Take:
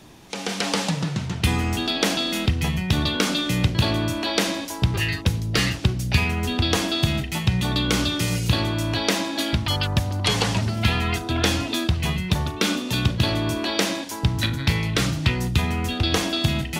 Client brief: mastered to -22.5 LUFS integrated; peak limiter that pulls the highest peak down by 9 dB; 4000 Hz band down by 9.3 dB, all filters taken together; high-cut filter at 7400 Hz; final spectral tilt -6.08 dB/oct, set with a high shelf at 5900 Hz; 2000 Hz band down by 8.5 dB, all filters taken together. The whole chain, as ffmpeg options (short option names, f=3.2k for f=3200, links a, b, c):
-af "lowpass=7.4k,equalizer=f=2k:t=o:g=-8.5,equalizer=f=4k:t=o:g=-7,highshelf=f=5.9k:g=-4.5,volume=4dB,alimiter=limit=-12dB:level=0:latency=1"